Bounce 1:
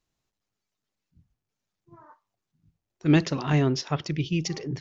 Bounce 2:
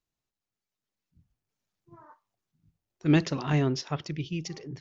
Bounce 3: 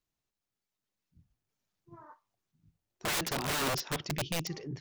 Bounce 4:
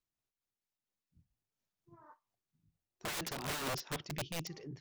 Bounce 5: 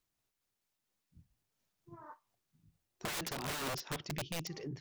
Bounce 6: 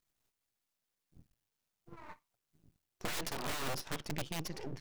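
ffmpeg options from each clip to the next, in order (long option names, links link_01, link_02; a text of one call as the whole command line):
ffmpeg -i in.wav -af "dynaudnorm=framelen=260:gausssize=9:maxgain=8dB,volume=-8dB" out.wav
ffmpeg -i in.wav -af "aeval=exprs='(mod(21.1*val(0)+1,2)-1)/21.1':channel_layout=same" out.wav
ffmpeg -i in.wav -af "tremolo=f=4.3:d=0.37,volume=-5dB" out.wav
ffmpeg -i in.wav -af "acompressor=threshold=-46dB:ratio=3,volume=7dB" out.wav
ffmpeg -i in.wav -af "aeval=exprs='max(val(0),0)':channel_layout=same,volume=5dB" out.wav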